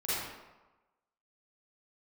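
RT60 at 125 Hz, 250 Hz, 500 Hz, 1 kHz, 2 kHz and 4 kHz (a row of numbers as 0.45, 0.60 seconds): 1.0, 1.0, 1.1, 1.2, 0.90, 0.70 seconds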